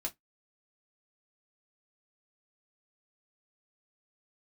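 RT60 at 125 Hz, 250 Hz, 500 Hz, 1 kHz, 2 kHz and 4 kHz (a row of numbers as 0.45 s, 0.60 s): 0.20 s, 0.15 s, 0.15 s, 0.15 s, 0.15 s, 0.10 s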